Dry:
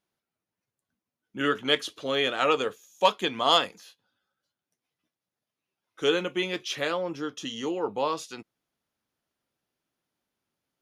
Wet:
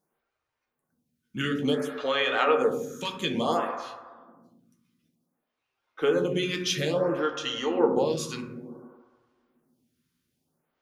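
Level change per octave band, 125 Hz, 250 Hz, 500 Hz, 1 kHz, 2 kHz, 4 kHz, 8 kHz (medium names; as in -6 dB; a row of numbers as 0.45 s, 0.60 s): +7.5 dB, +3.5 dB, +2.5 dB, -2.0 dB, -0.5 dB, -4.0 dB, +3.0 dB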